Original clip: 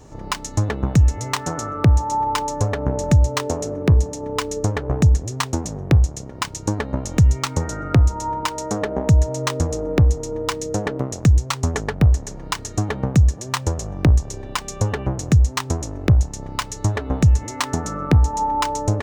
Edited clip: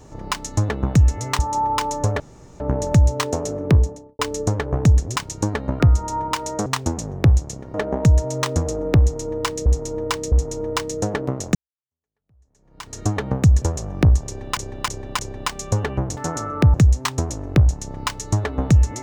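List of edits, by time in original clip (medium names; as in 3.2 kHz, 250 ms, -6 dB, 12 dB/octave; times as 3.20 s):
1.39–1.96 s: move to 15.26 s
2.77 s: insert room tone 0.40 s
3.88–4.36 s: studio fade out
5.33–6.41 s: move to 8.78 s
7.05–7.92 s: delete
10.04–10.70 s: loop, 3 plays
11.27–12.71 s: fade in exponential
13.34–13.64 s: delete
14.28–14.59 s: loop, 4 plays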